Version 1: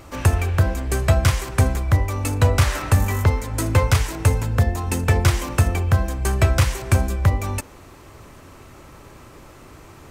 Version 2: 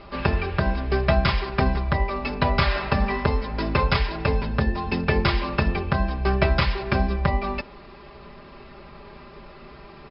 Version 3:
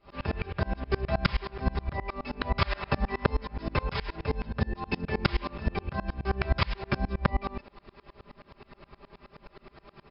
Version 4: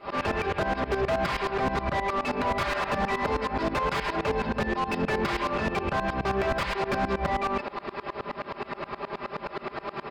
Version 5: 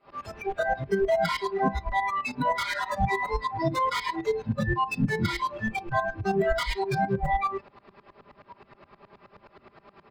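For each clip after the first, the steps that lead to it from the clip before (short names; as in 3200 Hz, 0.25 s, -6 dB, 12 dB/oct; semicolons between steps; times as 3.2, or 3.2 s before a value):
Chebyshev low-pass 5200 Hz, order 10; comb 5 ms, depth 99%; gain -1.5 dB
dB-ramp tremolo swelling 9.5 Hz, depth 28 dB
overdrive pedal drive 40 dB, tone 1200 Hz, clips at -7.5 dBFS; gain -8.5 dB
octaver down 1 oct, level -1 dB; spectral noise reduction 23 dB; gain +4.5 dB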